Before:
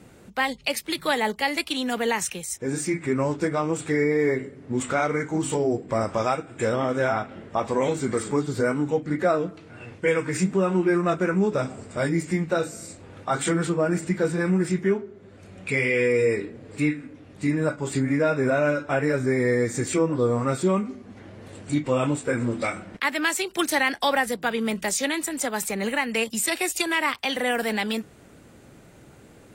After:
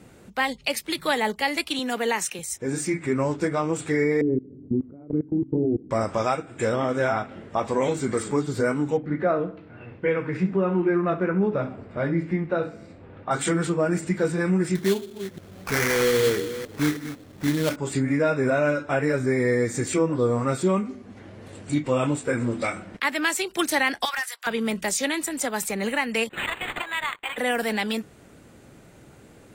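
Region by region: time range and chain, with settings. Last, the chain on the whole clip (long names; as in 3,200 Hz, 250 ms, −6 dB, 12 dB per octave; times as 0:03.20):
0:01.79–0:02.39: high-pass filter 210 Hz + notch filter 3,300 Hz, Q 28
0:04.21–0:05.91: low-pass with resonance 310 Hz, resonance Q 2.5 + low-shelf EQ 160 Hz +7.5 dB + output level in coarse steps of 22 dB
0:08.97–0:13.31: high-frequency loss of the air 370 metres + repeating echo 66 ms, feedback 38%, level −14 dB
0:14.75–0:17.76: delay that plays each chunk backwards 317 ms, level −11.5 dB + sample-rate reduction 3,800 Hz, jitter 20%
0:24.05–0:24.47: high-pass filter 1,100 Hz 24 dB per octave + upward compression, threshold −38 dBFS + gain into a clipping stage and back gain 23.5 dB
0:26.29–0:27.38: high-pass filter 1,100 Hz + linearly interpolated sample-rate reduction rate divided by 8×
whole clip: no processing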